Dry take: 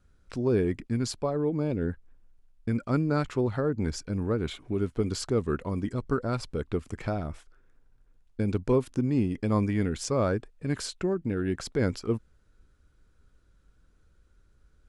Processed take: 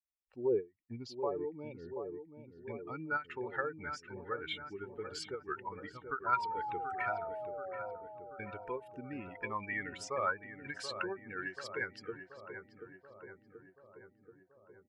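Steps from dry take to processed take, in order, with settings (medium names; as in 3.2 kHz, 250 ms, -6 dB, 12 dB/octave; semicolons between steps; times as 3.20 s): expander on every frequency bin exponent 2; comb 2.2 ms, depth 34%; in parallel at -2 dB: compression, threshold -39 dBFS, peak gain reduction 17 dB; on the sum: peak limiter -23 dBFS, peak gain reduction 8.5 dB; 0.76–3.00 s: touch-sensitive phaser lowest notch 460 Hz, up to 1.6 kHz, full sweep at -35.5 dBFS; 6.26–7.96 s: painted sound fall 500–1000 Hz -38 dBFS; band-pass sweep 600 Hz -> 1.6 kHz, 0.49–1.53 s; level rider gain up to 9 dB; on a send: filtered feedback delay 732 ms, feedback 69%, low-pass 1.4 kHz, level -8.5 dB; on the sum: endings held to a fixed fall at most 280 dB/s; trim +1 dB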